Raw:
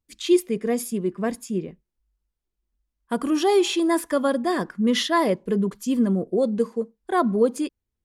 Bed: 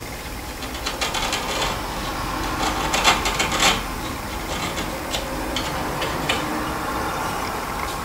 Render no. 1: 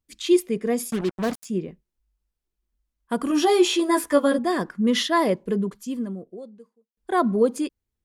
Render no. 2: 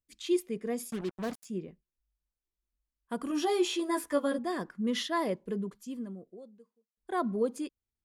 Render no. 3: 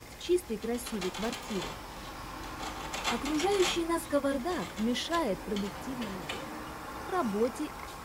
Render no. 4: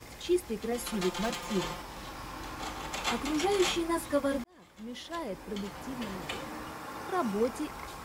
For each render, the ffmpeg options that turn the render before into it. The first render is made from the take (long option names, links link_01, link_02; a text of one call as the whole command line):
ffmpeg -i in.wav -filter_complex "[0:a]asplit=3[link_01][link_02][link_03];[link_01]afade=type=out:start_time=0.9:duration=0.02[link_04];[link_02]acrusher=bits=4:mix=0:aa=0.5,afade=type=in:start_time=0.9:duration=0.02,afade=type=out:start_time=1.44:duration=0.02[link_05];[link_03]afade=type=in:start_time=1.44:duration=0.02[link_06];[link_04][link_05][link_06]amix=inputs=3:normalize=0,asettb=1/sr,asplit=3[link_07][link_08][link_09];[link_07]atrim=end=3.294[link_10];[link_08]atrim=start=3.29:end=4.39,asetpts=PTS-STARTPTS,afade=type=in:duration=0.004:curve=qsin,afade=type=out:start_time=1.096:duration=0.004:curve=qsin,asplit=2[link_11][link_12];[link_12]adelay=14,volume=-2dB[link_13];[link_11][link_13]amix=inputs=2:normalize=0,atrim=end_sample=48510[link_14];[link_09]atrim=start=4.386[link_15];[link_10][link_14]acrossfade=duration=0.004:curve1=hsin:curve2=qsin[link_16];[link_16][link_15]acrossfade=duration=0.004:curve1=qsin:curve2=hsin,asplit=2[link_17][link_18];[link_17]atrim=end=6.97,asetpts=PTS-STARTPTS,afade=type=out:start_time=5.44:duration=1.53:curve=qua[link_19];[link_18]atrim=start=6.97,asetpts=PTS-STARTPTS,afade=type=in:duration=0.004:curve=hsin[link_20];[link_19][link_20]concat=n=2:v=0:a=1" out.wav
ffmpeg -i in.wav -af "volume=-10dB" out.wav
ffmpeg -i in.wav -i bed.wav -filter_complex "[1:a]volume=-16dB[link_01];[0:a][link_01]amix=inputs=2:normalize=0" out.wav
ffmpeg -i in.wav -filter_complex "[0:a]asettb=1/sr,asplit=3[link_01][link_02][link_03];[link_01]atrim=end=0.714[link_04];[link_02]atrim=start=0.71:end=1.82,asetpts=PTS-STARTPTS,afade=type=in:duration=0.004:curve=qsin,afade=type=out:start_time=1.106:duration=0.004:curve=qsin,aecho=1:1:5.7:0.78,atrim=end_sample=48951[link_05];[link_03]atrim=start=1.816[link_06];[link_04][link_05]acrossfade=duration=0.004:curve1=hsin:curve2=qsin[link_07];[link_07][link_06]acrossfade=duration=0.004:curve1=qsin:curve2=hsin,asettb=1/sr,asplit=3[link_08][link_09][link_10];[link_08]atrim=end=6.694[link_11];[link_09]atrim=start=6.69:end=7.36,asetpts=PTS-STARTPTS,afade=type=in:duration=0.004:curve=qsin,afade=type=out:start_time=0.666:duration=0.004:curve=qsin,highpass=96[link_12];[link_10]atrim=start=7.356[link_13];[link_11][link_12]acrossfade=duration=0.004:curve1=hsin:curve2=qsin[link_14];[link_14][link_13]acrossfade=duration=0.004:curve1=qsin:curve2=hsin,asplit=2[link_15][link_16];[link_15]atrim=end=4.44,asetpts=PTS-STARTPTS,afade=type=out:start_time=4.436:duration=0.004:curve=hsin[link_17];[link_16]atrim=start=4.44,asetpts=PTS-STARTPTS,afade=type=in:duration=1.73[link_18];[link_17][link_18]concat=n=2:v=0:a=1" out.wav